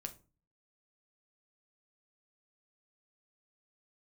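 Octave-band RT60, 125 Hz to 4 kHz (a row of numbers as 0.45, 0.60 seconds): 0.60, 0.50, 0.35, 0.35, 0.25, 0.20 seconds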